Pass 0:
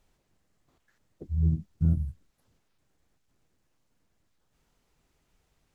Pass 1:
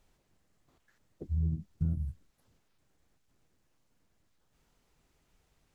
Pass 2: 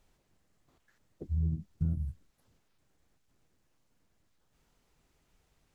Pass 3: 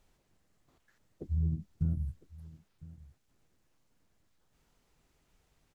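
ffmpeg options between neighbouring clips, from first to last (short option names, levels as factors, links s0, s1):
-af "acompressor=threshold=0.0447:ratio=6"
-af anull
-af "aecho=1:1:1006:0.106"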